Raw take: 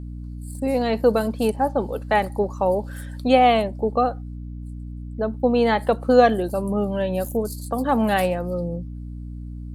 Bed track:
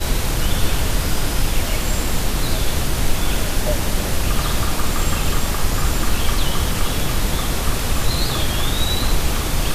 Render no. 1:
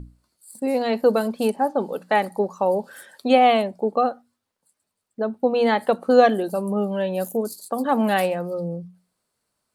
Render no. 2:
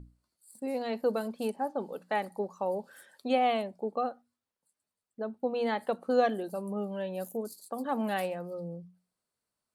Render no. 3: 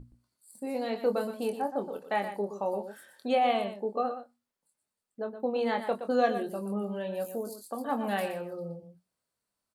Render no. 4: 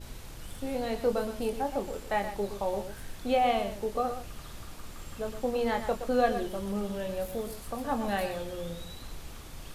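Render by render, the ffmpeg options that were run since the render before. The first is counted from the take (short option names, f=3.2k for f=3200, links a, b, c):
-af "bandreject=f=60:t=h:w=6,bandreject=f=120:t=h:w=6,bandreject=f=180:t=h:w=6,bandreject=f=240:t=h:w=6,bandreject=f=300:t=h:w=6"
-af "volume=-11dB"
-filter_complex "[0:a]asplit=2[a][b];[b]adelay=25,volume=-7dB[c];[a][c]amix=inputs=2:normalize=0,aecho=1:1:120:0.316"
-filter_complex "[1:a]volume=-24.5dB[a];[0:a][a]amix=inputs=2:normalize=0"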